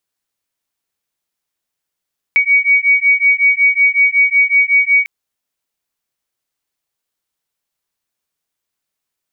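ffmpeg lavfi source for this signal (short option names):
-f lavfi -i "aevalsrc='0.251*(sin(2*PI*2250*t)+sin(2*PI*2255.4*t))':d=2.7:s=44100"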